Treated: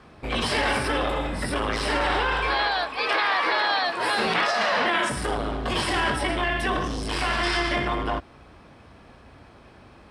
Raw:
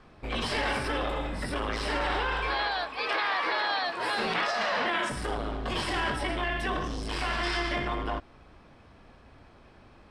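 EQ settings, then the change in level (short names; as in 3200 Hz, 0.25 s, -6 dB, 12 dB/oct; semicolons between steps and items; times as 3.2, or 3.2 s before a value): HPF 46 Hz; bell 10000 Hz +5 dB 0.43 oct; +5.5 dB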